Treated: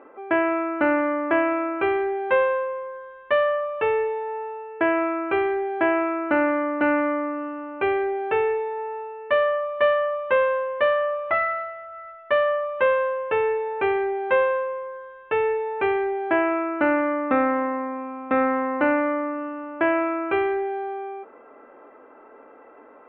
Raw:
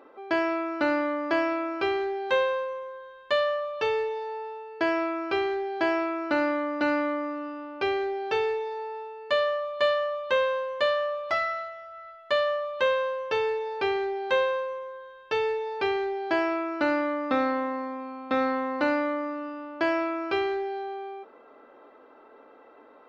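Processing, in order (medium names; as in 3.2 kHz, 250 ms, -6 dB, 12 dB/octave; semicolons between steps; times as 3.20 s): steep low-pass 2.6 kHz 36 dB/octave; trim +4.5 dB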